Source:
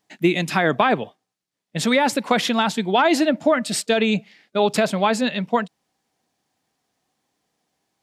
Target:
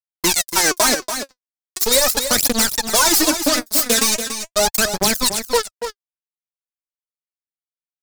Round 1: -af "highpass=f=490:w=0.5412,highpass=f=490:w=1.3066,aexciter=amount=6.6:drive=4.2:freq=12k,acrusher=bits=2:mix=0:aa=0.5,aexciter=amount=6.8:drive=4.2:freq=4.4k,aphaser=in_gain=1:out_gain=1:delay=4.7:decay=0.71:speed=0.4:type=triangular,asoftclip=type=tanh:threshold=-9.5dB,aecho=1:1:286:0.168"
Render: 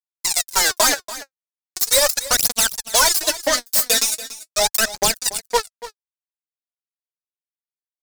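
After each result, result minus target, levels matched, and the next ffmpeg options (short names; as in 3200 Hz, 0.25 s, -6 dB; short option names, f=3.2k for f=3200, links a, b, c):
250 Hz band -11.5 dB; echo-to-direct -6.5 dB
-af "highpass=f=200:w=0.5412,highpass=f=200:w=1.3066,aexciter=amount=6.6:drive=4.2:freq=12k,acrusher=bits=2:mix=0:aa=0.5,aexciter=amount=6.8:drive=4.2:freq=4.4k,aphaser=in_gain=1:out_gain=1:delay=4.7:decay=0.71:speed=0.4:type=triangular,asoftclip=type=tanh:threshold=-9.5dB,aecho=1:1:286:0.168"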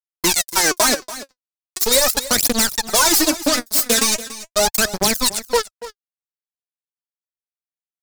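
echo-to-direct -6.5 dB
-af "highpass=f=200:w=0.5412,highpass=f=200:w=1.3066,aexciter=amount=6.6:drive=4.2:freq=12k,acrusher=bits=2:mix=0:aa=0.5,aexciter=amount=6.8:drive=4.2:freq=4.4k,aphaser=in_gain=1:out_gain=1:delay=4.7:decay=0.71:speed=0.4:type=triangular,asoftclip=type=tanh:threshold=-9.5dB,aecho=1:1:286:0.355"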